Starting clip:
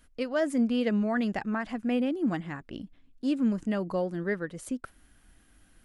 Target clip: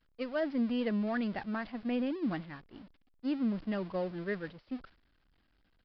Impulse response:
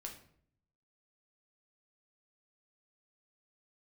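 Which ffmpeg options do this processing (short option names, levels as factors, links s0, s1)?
-af "aeval=exprs='val(0)+0.5*0.0188*sgn(val(0))':c=same,agate=range=0.0224:threshold=0.0447:ratio=3:detection=peak,aresample=11025,aresample=44100,volume=0.473"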